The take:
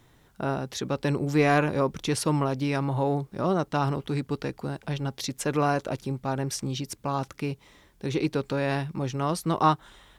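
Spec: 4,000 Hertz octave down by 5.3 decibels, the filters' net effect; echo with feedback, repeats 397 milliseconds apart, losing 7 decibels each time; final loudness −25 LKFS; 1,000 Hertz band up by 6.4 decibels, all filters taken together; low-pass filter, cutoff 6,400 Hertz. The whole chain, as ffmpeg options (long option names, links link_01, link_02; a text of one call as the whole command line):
ffmpeg -i in.wav -af "lowpass=6400,equalizer=frequency=1000:width_type=o:gain=8.5,equalizer=frequency=4000:width_type=o:gain=-6.5,aecho=1:1:397|794|1191|1588|1985:0.447|0.201|0.0905|0.0407|0.0183,volume=-0.5dB" out.wav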